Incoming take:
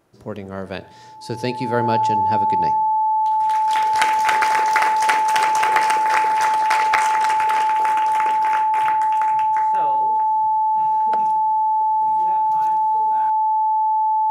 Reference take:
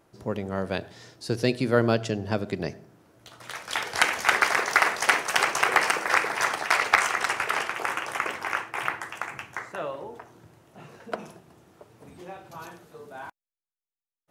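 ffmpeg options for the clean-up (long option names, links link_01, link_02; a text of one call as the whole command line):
ffmpeg -i in.wav -af "bandreject=frequency=870:width=30" out.wav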